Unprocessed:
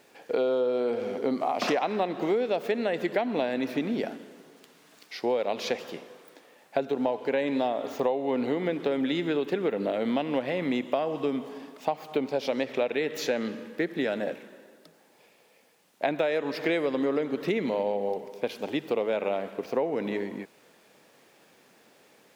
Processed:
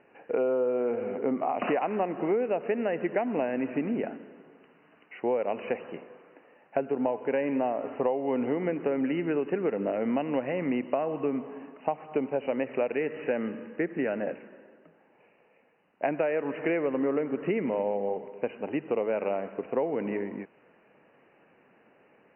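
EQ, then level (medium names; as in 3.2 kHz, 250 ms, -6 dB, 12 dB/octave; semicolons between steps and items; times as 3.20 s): brick-wall FIR low-pass 3 kHz; distance through air 280 m; 0.0 dB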